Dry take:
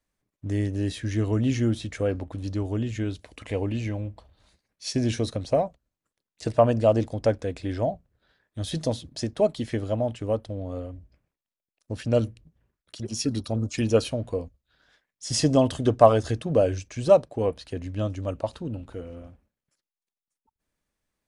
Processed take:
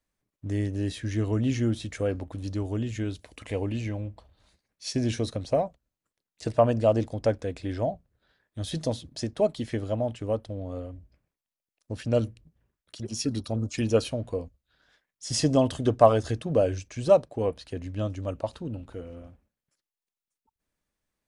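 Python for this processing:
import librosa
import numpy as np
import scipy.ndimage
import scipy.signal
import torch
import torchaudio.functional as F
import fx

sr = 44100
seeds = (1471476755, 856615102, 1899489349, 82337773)

y = fx.high_shelf(x, sr, hz=7500.0, db=5.5, at=(1.8, 3.82))
y = y * 10.0 ** (-2.0 / 20.0)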